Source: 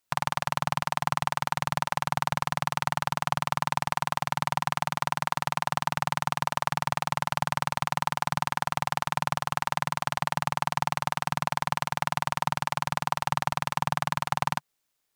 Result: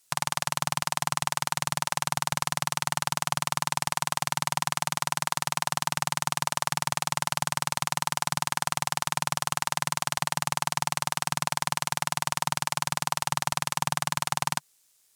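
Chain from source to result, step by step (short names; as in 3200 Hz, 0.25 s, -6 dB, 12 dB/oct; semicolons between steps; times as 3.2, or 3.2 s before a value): bell 8600 Hz +13.5 dB 2.2 oct; limiter -6 dBFS, peak gain reduction 9 dB; gain +4 dB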